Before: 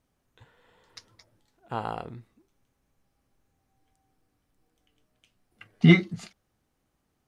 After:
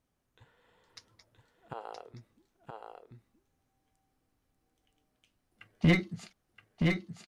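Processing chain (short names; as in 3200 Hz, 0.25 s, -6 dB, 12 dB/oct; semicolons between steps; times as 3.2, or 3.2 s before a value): 1.73–2.14 ladder high-pass 380 Hz, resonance 45%; one-sided clip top -18 dBFS; echo 0.972 s -4 dB; gain -5 dB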